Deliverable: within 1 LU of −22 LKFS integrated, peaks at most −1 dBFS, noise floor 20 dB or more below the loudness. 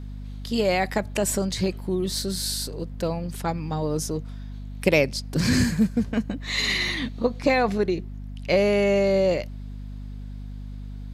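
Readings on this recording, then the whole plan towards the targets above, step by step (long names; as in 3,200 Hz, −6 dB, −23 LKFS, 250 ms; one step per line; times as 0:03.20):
mains hum 50 Hz; hum harmonics up to 250 Hz; level of the hum −33 dBFS; integrated loudness −24.5 LKFS; sample peak −5.0 dBFS; target loudness −22.0 LKFS
→ hum removal 50 Hz, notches 5
level +2.5 dB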